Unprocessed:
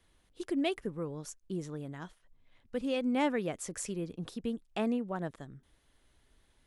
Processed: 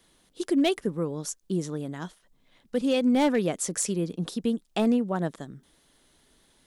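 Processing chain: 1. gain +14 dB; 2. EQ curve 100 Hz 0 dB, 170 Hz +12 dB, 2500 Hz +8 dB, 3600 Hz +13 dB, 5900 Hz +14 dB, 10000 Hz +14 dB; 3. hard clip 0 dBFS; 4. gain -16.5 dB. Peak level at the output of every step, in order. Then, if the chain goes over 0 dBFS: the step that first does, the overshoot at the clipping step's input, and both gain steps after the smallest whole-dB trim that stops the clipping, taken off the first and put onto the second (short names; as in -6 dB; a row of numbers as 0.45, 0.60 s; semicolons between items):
-3.5, +6.5, 0.0, -16.5 dBFS; step 2, 6.5 dB; step 1 +7 dB, step 4 -9.5 dB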